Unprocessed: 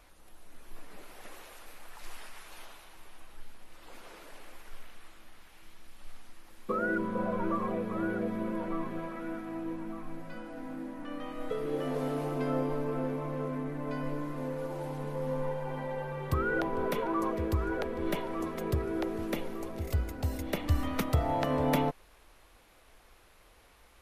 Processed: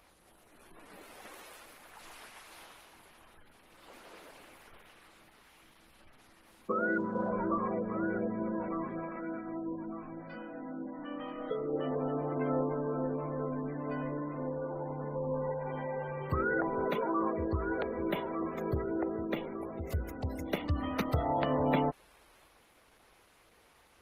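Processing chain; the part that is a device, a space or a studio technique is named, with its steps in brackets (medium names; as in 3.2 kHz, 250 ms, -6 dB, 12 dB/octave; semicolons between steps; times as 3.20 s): noise-suppressed video call (high-pass 110 Hz 6 dB/octave; spectral gate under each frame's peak -25 dB strong; Opus 16 kbps 48 kHz)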